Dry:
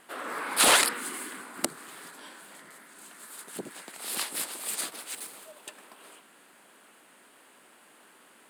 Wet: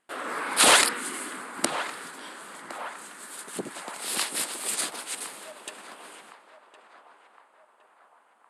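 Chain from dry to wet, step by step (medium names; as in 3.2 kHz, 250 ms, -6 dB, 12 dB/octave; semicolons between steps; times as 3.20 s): low-pass 11 kHz 24 dB/octave; gate with hold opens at -45 dBFS; gain riding within 3 dB 2 s; band-passed feedback delay 1062 ms, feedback 60%, band-pass 920 Hz, level -10 dB; trim +1.5 dB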